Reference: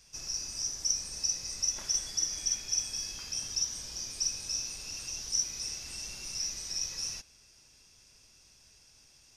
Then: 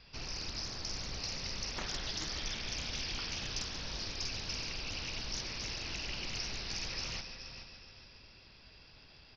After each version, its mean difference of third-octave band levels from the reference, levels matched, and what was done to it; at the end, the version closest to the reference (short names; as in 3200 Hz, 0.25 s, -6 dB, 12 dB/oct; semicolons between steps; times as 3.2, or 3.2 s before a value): 13.0 dB: air absorption 83 m; multi-head echo 0.142 s, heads first and third, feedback 51%, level -10.5 dB; downsampling 11025 Hz; Doppler distortion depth 0.55 ms; gain +7.5 dB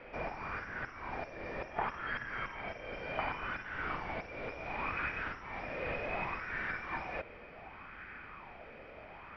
17.0 dB: compressor 6:1, threshold -39 dBFS, peak gain reduction 14.5 dB; soft clip -38.5 dBFS, distortion -13 dB; mistuned SSB -190 Hz 150–2500 Hz; LFO bell 0.68 Hz 510–1600 Hz +13 dB; gain +18 dB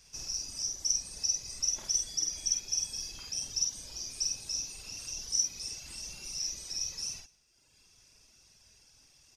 2.5 dB: reverb removal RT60 1.4 s; dynamic EQ 1600 Hz, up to -6 dB, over -56 dBFS, Q 1.2; doubler 49 ms -3.5 dB; echo 0.165 s -23.5 dB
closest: third